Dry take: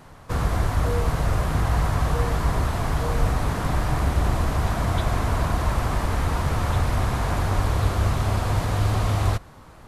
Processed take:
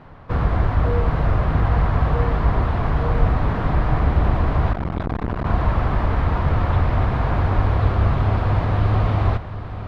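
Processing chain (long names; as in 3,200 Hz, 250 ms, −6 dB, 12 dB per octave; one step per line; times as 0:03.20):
high-frequency loss of the air 350 metres
feedback delay with all-pass diffusion 807 ms, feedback 44%, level −12.5 dB
0:04.73–0:05.46: saturating transformer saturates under 340 Hz
level +4 dB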